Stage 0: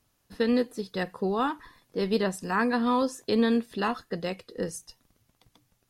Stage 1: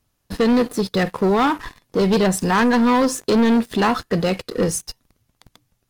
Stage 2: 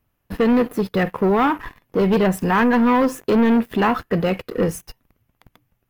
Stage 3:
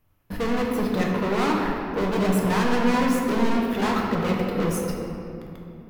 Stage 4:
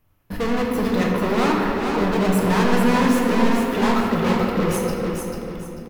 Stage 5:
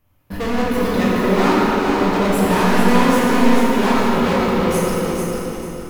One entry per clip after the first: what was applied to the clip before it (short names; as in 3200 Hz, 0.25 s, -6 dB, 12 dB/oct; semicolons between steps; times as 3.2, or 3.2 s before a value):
low shelf 140 Hz +5.5 dB; sample leveller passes 3; in parallel at +2 dB: limiter -23 dBFS, peak gain reduction 10.5 dB; on the sum: gain -1.5 dB
band shelf 6000 Hz -11.5 dB
soft clip -25 dBFS, distortion -9 dB; reverb RT60 2.8 s, pre-delay 7 ms, DRR -2 dB
feedback echo 0.443 s, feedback 32%, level -5 dB; gain +2.5 dB
plate-style reverb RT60 2.3 s, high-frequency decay 1×, pre-delay 0 ms, DRR -2 dB